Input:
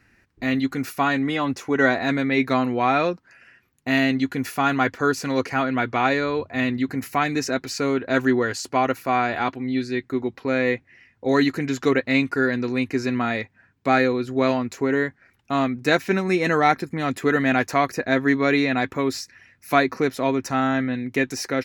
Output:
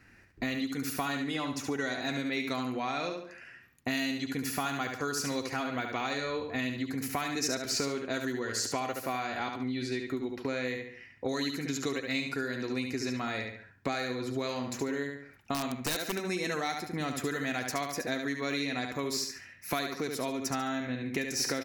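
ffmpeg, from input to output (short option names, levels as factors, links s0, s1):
-filter_complex "[0:a]aecho=1:1:71|142|213|284:0.501|0.15|0.0451|0.0135,acrossover=split=4000[s0][s1];[s0]acompressor=threshold=0.0316:ratio=16[s2];[s2][s1]amix=inputs=2:normalize=0,asettb=1/sr,asplit=3[s3][s4][s5];[s3]atrim=end=15.544[s6];[s4]atrim=start=15.54:end=16.18,asetpts=PTS-STARTPTS,afade=t=in:d=0.004:c=qsin,afade=t=out:st=0.636:d=0.004:c=qsin,aeval=exprs='(mod(15.8*val(0)+1,2)-1)/15.8':c=same[s7];[s5]atrim=start=16.176[s8];[s6][s7]acrossfade=d=0.004:c1=hsin:c2=qsin[s9];[s9][s8]acrossfade=d=0.004:c1=qsin:c2=hsin"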